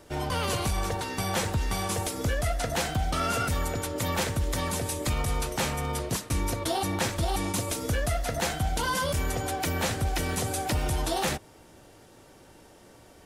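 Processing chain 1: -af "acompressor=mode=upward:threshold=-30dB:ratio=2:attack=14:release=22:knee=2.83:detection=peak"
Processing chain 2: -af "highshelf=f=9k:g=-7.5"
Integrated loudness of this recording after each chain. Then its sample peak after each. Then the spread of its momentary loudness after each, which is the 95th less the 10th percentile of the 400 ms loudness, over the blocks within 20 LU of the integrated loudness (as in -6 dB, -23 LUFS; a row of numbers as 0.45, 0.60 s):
-28.5, -29.5 LUFS; -15.0, -19.0 dBFS; 14, 3 LU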